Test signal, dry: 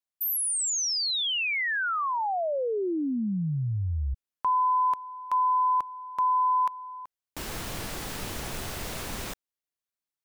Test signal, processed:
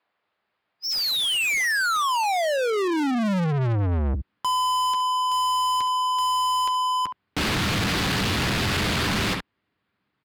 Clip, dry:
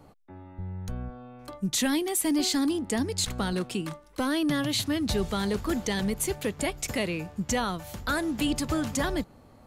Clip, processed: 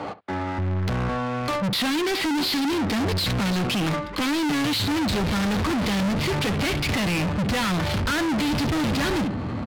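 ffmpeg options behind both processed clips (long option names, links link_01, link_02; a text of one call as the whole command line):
ffmpeg -i in.wav -filter_complex "[0:a]aresample=11025,asoftclip=type=hard:threshold=-27.5dB,aresample=44100,acompressor=threshold=-31dB:ratio=4:attack=3.9:release=47:knee=1,highpass=frequency=63:poles=1,aecho=1:1:10|68:0.251|0.15,asubboost=boost=10:cutoff=190,asplit=2[link_01][link_02];[link_02]highpass=frequency=720:poles=1,volume=42dB,asoftclip=type=tanh:threshold=-10.5dB[link_03];[link_01][link_03]amix=inputs=2:normalize=0,lowpass=frequency=2600:poles=1,volume=-6dB,highshelf=frequency=2500:gain=6,adynamicsmooth=sensitivity=3:basefreq=1700,volume=-6.5dB" out.wav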